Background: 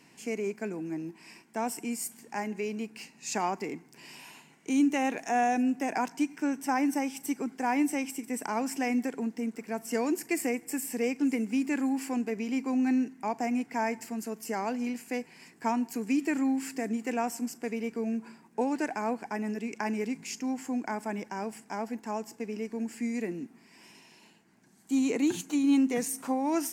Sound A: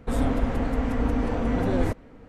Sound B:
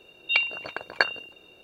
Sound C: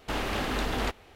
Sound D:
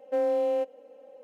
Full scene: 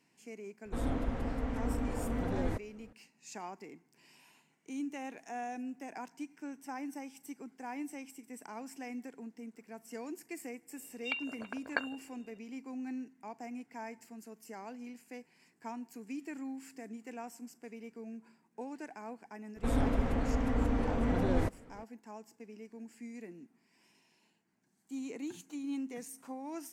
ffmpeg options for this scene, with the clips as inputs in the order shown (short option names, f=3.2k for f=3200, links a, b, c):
-filter_complex "[1:a]asplit=2[a][b];[0:a]volume=-14dB[c];[2:a]lowpass=2.4k[d];[a]atrim=end=2.28,asetpts=PTS-STARTPTS,volume=-10dB,afade=t=in:d=0.004:c=hsin,afade=t=out:st=2.276:d=0.004:c=hsin,adelay=650[e];[d]atrim=end=1.63,asetpts=PTS-STARTPTS,volume=-10dB,afade=t=in:d=0.004:c=hsin,afade=t=out:st=1.626:d=0.004:c=hsin,adelay=10760[f];[b]atrim=end=2.28,asetpts=PTS-STARTPTS,volume=-6dB,afade=t=in:d=0.004:c=hsin,afade=t=out:st=2.276:d=0.004:c=hsin,adelay=862596S[g];[c][e][f][g]amix=inputs=4:normalize=0"